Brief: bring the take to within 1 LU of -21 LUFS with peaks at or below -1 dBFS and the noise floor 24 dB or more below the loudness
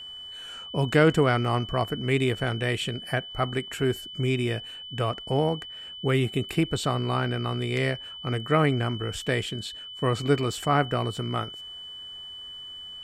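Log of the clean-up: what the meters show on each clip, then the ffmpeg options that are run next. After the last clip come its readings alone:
steady tone 3 kHz; tone level -38 dBFS; loudness -26.5 LUFS; peak level -8.5 dBFS; loudness target -21.0 LUFS
-> -af "bandreject=f=3000:w=30"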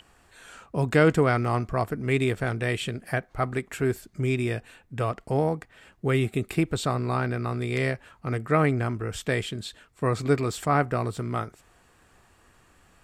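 steady tone not found; loudness -27.0 LUFS; peak level -9.0 dBFS; loudness target -21.0 LUFS
-> -af "volume=2"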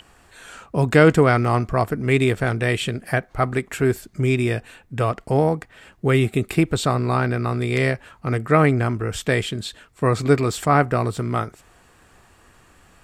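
loudness -21.0 LUFS; peak level -3.0 dBFS; noise floor -54 dBFS

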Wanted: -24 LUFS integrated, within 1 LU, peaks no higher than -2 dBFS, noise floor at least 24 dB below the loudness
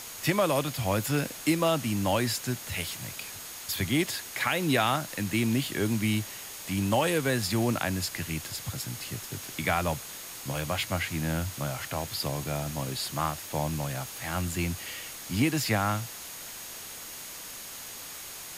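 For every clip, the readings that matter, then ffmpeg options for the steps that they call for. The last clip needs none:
steady tone 6.6 kHz; tone level -49 dBFS; noise floor -42 dBFS; noise floor target -54 dBFS; loudness -30.0 LUFS; peak level -12.5 dBFS; loudness target -24.0 LUFS
-> -af "bandreject=f=6600:w=30"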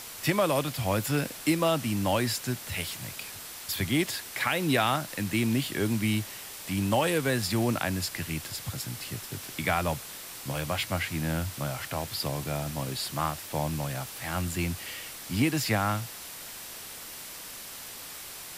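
steady tone not found; noise floor -42 dBFS; noise floor target -54 dBFS
-> -af "afftdn=nr=12:nf=-42"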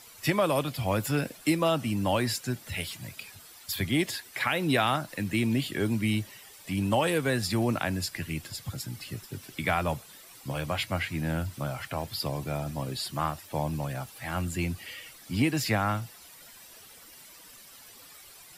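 noise floor -51 dBFS; noise floor target -54 dBFS
-> -af "afftdn=nr=6:nf=-51"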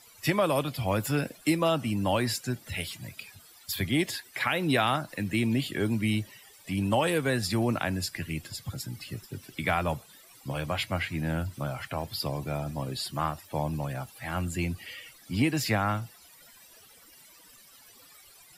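noise floor -55 dBFS; loudness -30.0 LUFS; peak level -12.5 dBFS; loudness target -24.0 LUFS
-> -af "volume=2"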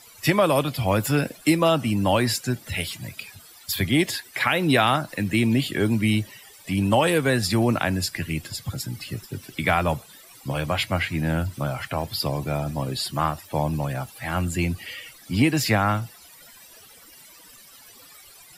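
loudness -24.0 LUFS; peak level -6.5 dBFS; noise floor -49 dBFS

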